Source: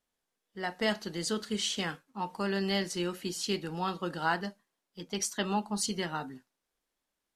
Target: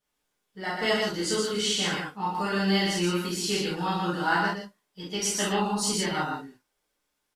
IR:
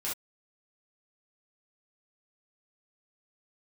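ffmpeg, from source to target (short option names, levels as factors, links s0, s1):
-filter_complex "[0:a]aecho=1:1:119:0.668[s0];[1:a]atrim=start_sample=2205[s1];[s0][s1]afir=irnorm=-1:irlink=0,volume=1.26"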